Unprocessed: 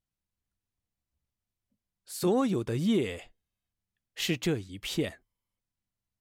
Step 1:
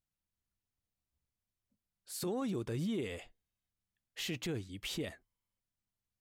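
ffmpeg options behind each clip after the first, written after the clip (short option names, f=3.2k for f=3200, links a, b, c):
-af "alimiter=level_in=2.5dB:limit=-24dB:level=0:latency=1:release=27,volume=-2.5dB,volume=-3.5dB"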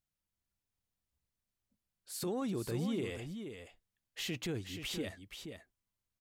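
-af "aecho=1:1:478:0.398"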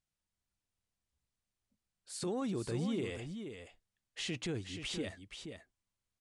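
-af "aresample=22050,aresample=44100"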